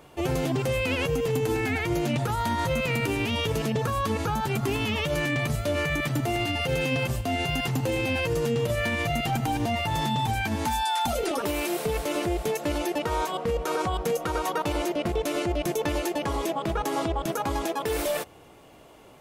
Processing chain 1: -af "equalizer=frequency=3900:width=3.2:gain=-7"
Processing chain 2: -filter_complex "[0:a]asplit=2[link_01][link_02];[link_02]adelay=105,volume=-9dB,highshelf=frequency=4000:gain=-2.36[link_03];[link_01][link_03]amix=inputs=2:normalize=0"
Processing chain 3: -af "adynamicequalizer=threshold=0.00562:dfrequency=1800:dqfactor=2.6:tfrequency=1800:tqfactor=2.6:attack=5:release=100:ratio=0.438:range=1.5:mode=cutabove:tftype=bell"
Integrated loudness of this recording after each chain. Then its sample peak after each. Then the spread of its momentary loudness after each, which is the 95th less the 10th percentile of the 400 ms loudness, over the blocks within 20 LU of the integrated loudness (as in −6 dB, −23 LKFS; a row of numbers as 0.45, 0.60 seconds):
−27.5, −26.5, −27.5 LKFS; −16.5, −15.0, −16.5 dBFS; 2, 3, 2 LU